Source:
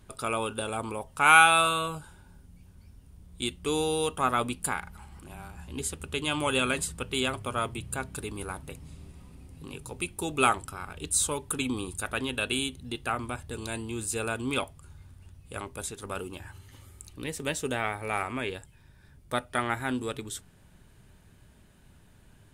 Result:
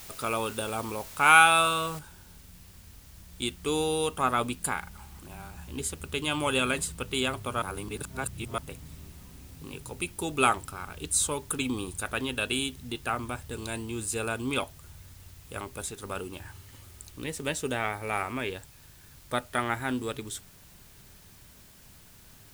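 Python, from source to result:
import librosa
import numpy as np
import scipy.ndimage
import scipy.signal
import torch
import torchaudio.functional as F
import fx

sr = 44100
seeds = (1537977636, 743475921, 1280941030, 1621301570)

y = fx.noise_floor_step(x, sr, seeds[0], at_s=1.99, before_db=-46, after_db=-56, tilt_db=0.0)
y = fx.edit(y, sr, fx.reverse_span(start_s=7.62, length_s=0.96), tone=tone)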